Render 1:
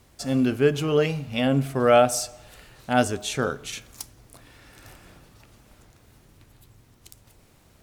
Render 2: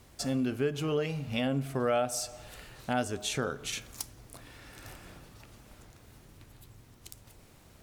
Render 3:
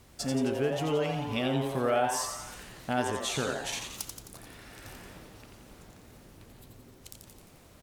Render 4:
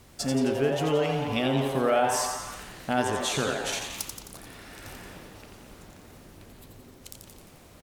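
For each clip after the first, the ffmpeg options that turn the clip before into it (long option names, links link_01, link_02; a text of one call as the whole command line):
ffmpeg -i in.wav -af "acompressor=threshold=-31dB:ratio=2.5" out.wav
ffmpeg -i in.wav -filter_complex "[0:a]asplit=9[link_01][link_02][link_03][link_04][link_05][link_06][link_07][link_08][link_09];[link_02]adelay=87,afreqshift=140,volume=-5.5dB[link_10];[link_03]adelay=174,afreqshift=280,volume=-10.2dB[link_11];[link_04]adelay=261,afreqshift=420,volume=-15dB[link_12];[link_05]adelay=348,afreqshift=560,volume=-19.7dB[link_13];[link_06]adelay=435,afreqshift=700,volume=-24.4dB[link_14];[link_07]adelay=522,afreqshift=840,volume=-29.2dB[link_15];[link_08]adelay=609,afreqshift=980,volume=-33.9dB[link_16];[link_09]adelay=696,afreqshift=1120,volume=-38.6dB[link_17];[link_01][link_10][link_11][link_12][link_13][link_14][link_15][link_16][link_17]amix=inputs=9:normalize=0" out.wav
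ffmpeg -i in.wav -filter_complex "[0:a]bandreject=frequency=60:width_type=h:width=6,bandreject=frequency=120:width_type=h:width=6,asplit=2[link_01][link_02];[link_02]adelay=210,highpass=300,lowpass=3400,asoftclip=type=hard:threshold=-25.5dB,volume=-8dB[link_03];[link_01][link_03]amix=inputs=2:normalize=0,volume=3.5dB" out.wav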